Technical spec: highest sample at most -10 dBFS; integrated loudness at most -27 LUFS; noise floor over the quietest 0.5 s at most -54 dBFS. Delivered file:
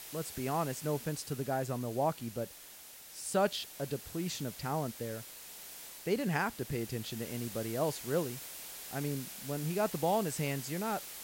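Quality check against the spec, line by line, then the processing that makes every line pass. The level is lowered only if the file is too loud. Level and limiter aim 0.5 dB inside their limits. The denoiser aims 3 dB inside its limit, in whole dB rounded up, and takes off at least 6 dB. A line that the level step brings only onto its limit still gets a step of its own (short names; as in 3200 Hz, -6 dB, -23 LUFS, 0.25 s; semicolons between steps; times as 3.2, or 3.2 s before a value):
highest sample -17.5 dBFS: OK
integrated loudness -36.0 LUFS: OK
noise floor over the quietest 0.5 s -52 dBFS: fail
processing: denoiser 6 dB, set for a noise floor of -52 dBFS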